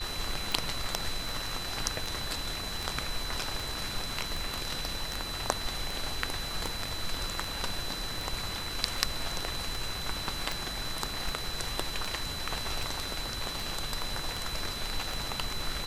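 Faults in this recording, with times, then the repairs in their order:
scratch tick 78 rpm
whistle 4,000 Hz −38 dBFS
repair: click removal
notch filter 4,000 Hz, Q 30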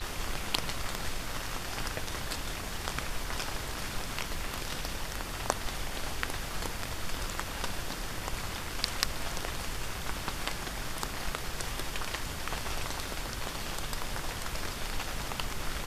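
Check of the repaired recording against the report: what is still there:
none of them is left

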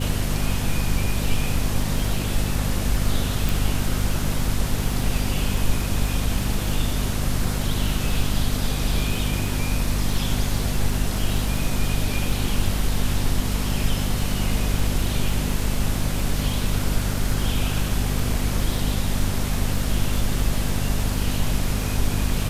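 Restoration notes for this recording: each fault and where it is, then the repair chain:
surface crackle 35 per second −28 dBFS
mains hum 50 Hz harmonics 5 −26 dBFS
0:03.49: click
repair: click removal
hum removal 50 Hz, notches 5

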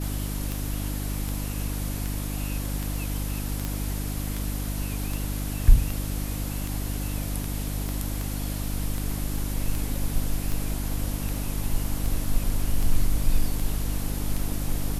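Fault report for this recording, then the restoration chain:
mains hum 50 Hz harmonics 6 −30 dBFS
scratch tick 78 rpm
0:03.65: click −14 dBFS
0:07.89: click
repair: click removal
hum removal 50 Hz, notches 6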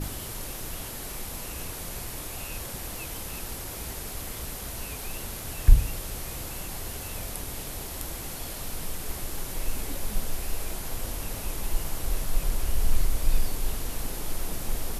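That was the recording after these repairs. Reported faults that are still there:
0:07.89: click

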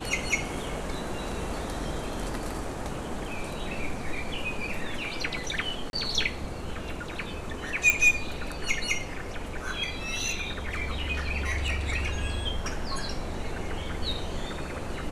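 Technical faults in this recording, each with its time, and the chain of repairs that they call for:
0:05.90–0:05.93: drop-out 31 ms
0:07.90: click −7 dBFS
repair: click removal
repair the gap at 0:05.90, 31 ms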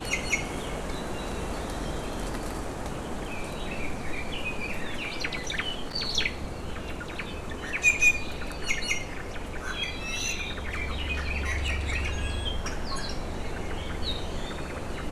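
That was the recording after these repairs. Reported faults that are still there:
none of them is left

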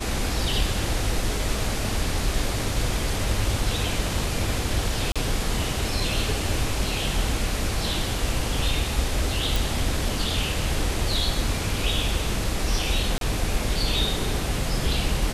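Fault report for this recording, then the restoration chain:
0:05.12–0:05.16: drop-out 36 ms
0:09.56: click
0:13.18–0:13.21: drop-out 32 ms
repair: click removal
repair the gap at 0:05.12, 36 ms
repair the gap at 0:13.18, 32 ms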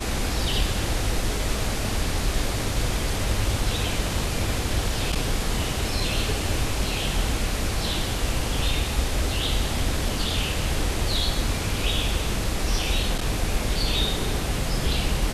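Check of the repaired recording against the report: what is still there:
none of them is left

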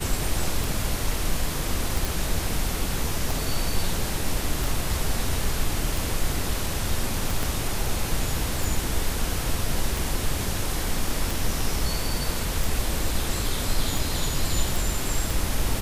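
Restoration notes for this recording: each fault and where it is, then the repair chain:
scratch tick 45 rpm
0:02.05: click
0:07.43: click
0:14.76: click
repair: click removal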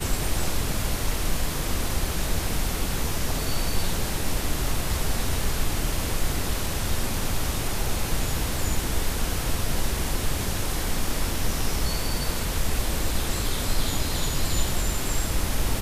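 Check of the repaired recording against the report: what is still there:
0:07.43: click

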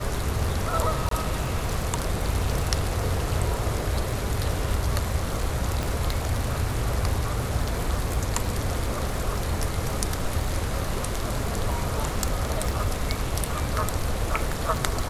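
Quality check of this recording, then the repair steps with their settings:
surface crackle 39 per second −30 dBFS
0:01.09–0:01.11: drop-out 23 ms
0:05.83: click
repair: click removal
repair the gap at 0:01.09, 23 ms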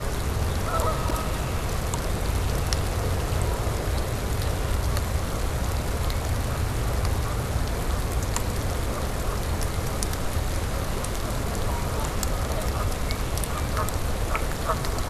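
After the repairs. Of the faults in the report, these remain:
none of them is left

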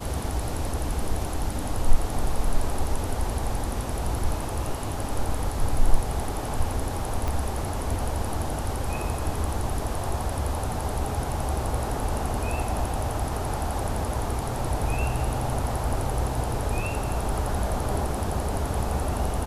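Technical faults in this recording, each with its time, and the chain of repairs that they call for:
0:07.28: click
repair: click removal

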